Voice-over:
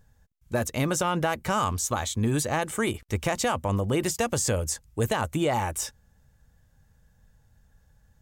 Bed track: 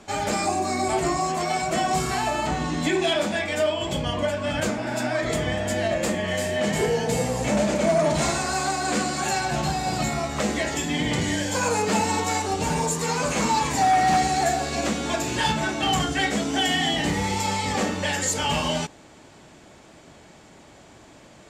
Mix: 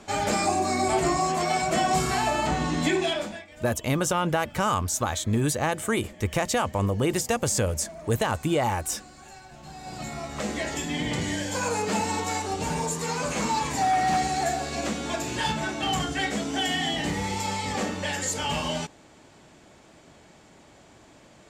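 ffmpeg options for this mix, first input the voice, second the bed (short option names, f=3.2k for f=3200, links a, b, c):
-filter_complex "[0:a]adelay=3100,volume=1dB[a];[1:a]volume=18dB,afade=t=out:st=2.85:d=0.61:silence=0.0794328,afade=t=in:st=9.6:d=1.07:silence=0.125893[b];[a][b]amix=inputs=2:normalize=0"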